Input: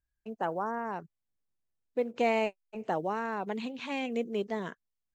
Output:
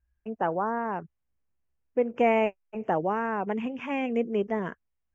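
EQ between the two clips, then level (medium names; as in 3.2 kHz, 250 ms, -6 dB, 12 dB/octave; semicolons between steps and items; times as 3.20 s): Butterworth band-stop 4.1 kHz, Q 1.5; distance through air 180 m; peaking EQ 64 Hz +13 dB 0.6 oct; +5.5 dB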